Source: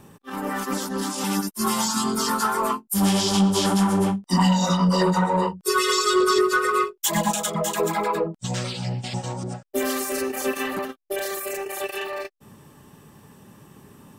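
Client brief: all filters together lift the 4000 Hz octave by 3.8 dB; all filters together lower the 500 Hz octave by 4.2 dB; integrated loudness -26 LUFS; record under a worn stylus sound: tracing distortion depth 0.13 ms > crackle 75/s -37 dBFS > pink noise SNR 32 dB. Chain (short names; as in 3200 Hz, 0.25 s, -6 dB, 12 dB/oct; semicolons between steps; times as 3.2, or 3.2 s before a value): bell 500 Hz -6 dB; bell 4000 Hz +5 dB; tracing distortion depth 0.13 ms; crackle 75/s -37 dBFS; pink noise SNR 32 dB; gain -2.5 dB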